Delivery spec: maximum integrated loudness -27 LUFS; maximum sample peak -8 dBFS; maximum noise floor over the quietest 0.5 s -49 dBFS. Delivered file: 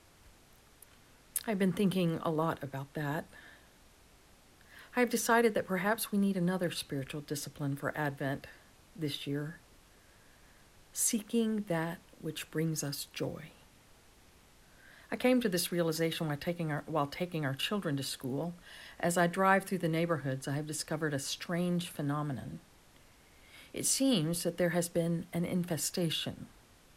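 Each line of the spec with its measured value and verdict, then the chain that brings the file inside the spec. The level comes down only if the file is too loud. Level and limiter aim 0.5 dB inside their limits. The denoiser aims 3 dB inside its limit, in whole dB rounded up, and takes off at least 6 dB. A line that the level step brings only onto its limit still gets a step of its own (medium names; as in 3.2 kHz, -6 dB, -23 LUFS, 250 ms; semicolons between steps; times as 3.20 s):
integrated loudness -33.5 LUFS: pass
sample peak -14.0 dBFS: pass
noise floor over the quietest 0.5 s -61 dBFS: pass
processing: none needed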